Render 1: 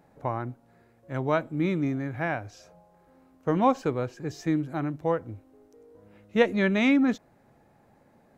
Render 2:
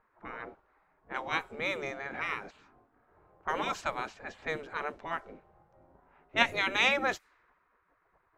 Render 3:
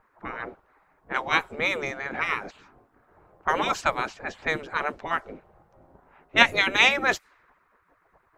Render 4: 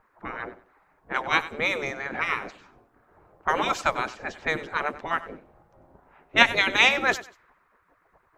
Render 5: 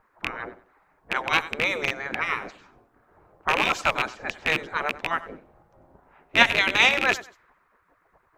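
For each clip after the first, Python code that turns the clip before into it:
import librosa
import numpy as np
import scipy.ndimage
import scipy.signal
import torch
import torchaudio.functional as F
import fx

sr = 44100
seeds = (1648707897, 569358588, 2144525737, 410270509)

y1 = fx.spec_gate(x, sr, threshold_db=-15, keep='weak')
y1 = fx.env_lowpass(y1, sr, base_hz=1100.0, full_db=-35.5)
y1 = F.gain(torch.from_numpy(y1), 6.0).numpy()
y2 = fx.hpss(y1, sr, part='percussive', gain_db=9)
y2 = F.gain(torch.from_numpy(y2), 1.0).numpy()
y3 = fx.echo_feedback(y2, sr, ms=95, feedback_pct=25, wet_db=-16.0)
y4 = fx.rattle_buzz(y3, sr, strikes_db=-38.0, level_db=-10.0)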